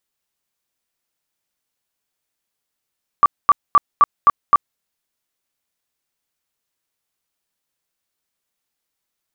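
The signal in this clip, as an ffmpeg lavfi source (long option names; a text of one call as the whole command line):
ffmpeg -f lavfi -i "aevalsrc='0.501*sin(2*PI*1160*mod(t,0.26))*lt(mod(t,0.26),33/1160)':duration=1.56:sample_rate=44100" out.wav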